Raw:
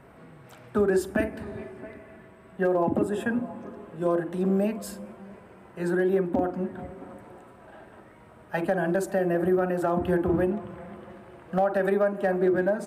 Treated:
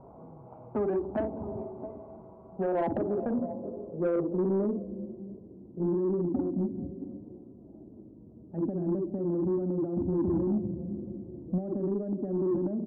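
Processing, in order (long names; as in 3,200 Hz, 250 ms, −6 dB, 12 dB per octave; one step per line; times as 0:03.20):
adaptive Wiener filter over 25 samples
0:10.08–0:11.94: low-shelf EQ 490 Hz +6 dB
brickwall limiter −22.5 dBFS, peak gain reduction 11.5 dB
low-pass filter sweep 900 Hz → 290 Hz, 0:02.40–0:05.67
soft clipping −21 dBFS, distortion −18 dB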